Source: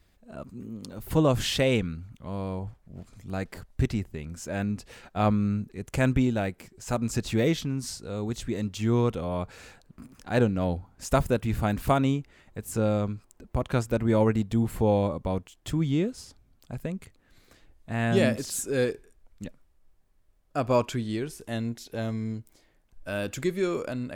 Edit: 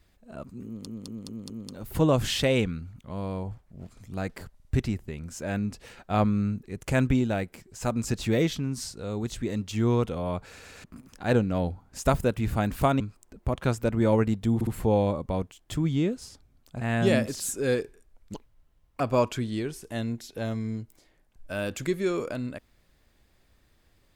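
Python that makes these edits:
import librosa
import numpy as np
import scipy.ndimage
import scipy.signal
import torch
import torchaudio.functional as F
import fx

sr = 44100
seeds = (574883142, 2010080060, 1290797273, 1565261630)

y = fx.edit(x, sr, fx.stutter(start_s=0.66, slice_s=0.21, count=5),
    fx.stutter(start_s=3.71, slice_s=0.05, count=3),
    fx.stutter_over(start_s=9.54, slice_s=0.12, count=3),
    fx.cut(start_s=12.06, length_s=1.02),
    fx.stutter(start_s=14.63, slice_s=0.06, count=3),
    fx.cut(start_s=16.77, length_s=1.14),
    fx.speed_span(start_s=19.44, length_s=1.13, speed=1.71), tone=tone)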